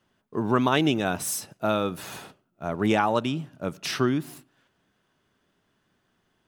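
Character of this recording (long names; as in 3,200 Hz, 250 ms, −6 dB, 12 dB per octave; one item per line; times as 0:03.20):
background noise floor −72 dBFS
spectral slope −4.5 dB per octave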